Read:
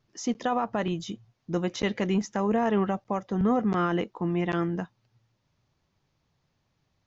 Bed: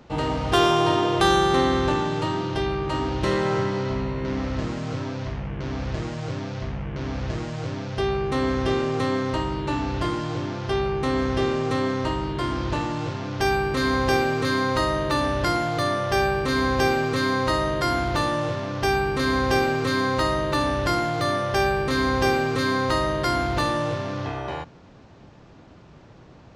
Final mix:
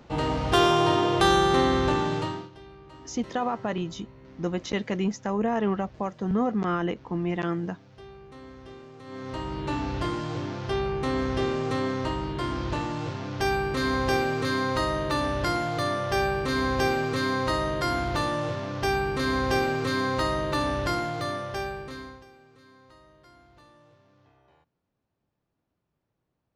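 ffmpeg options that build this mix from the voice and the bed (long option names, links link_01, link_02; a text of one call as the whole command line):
ffmpeg -i stem1.wav -i stem2.wav -filter_complex "[0:a]adelay=2900,volume=-1dB[link_01];[1:a]volume=17dB,afade=type=out:start_time=2.14:duration=0.36:silence=0.0944061,afade=type=in:start_time=9.04:duration=0.64:silence=0.11885,afade=type=out:start_time=20.77:duration=1.48:silence=0.0375837[link_02];[link_01][link_02]amix=inputs=2:normalize=0" out.wav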